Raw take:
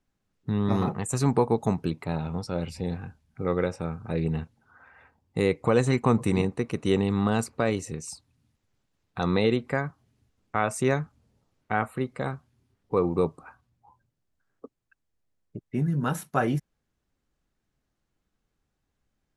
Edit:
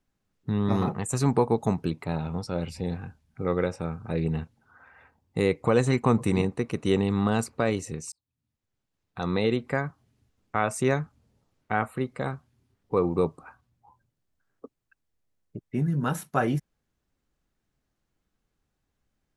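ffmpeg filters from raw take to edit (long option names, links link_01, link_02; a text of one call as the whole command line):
ffmpeg -i in.wav -filter_complex "[0:a]asplit=2[link_01][link_02];[link_01]atrim=end=8.12,asetpts=PTS-STARTPTS,afade=type=out:start_time=8.116:duration=0.004:curve=hsin[link_03];[link_02]atrim=start=8.12,asetpts=PTS-STARTPTS,afade=type=in:duration=1.63[link_04];[link_03][link_04]concat=n=2:v=0:a=1" out.wav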